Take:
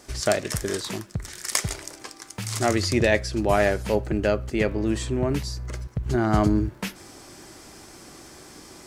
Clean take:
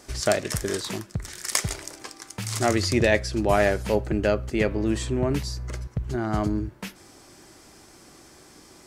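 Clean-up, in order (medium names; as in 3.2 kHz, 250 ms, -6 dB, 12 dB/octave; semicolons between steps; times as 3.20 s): de-click; gain correction -5 dB, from 6.06 s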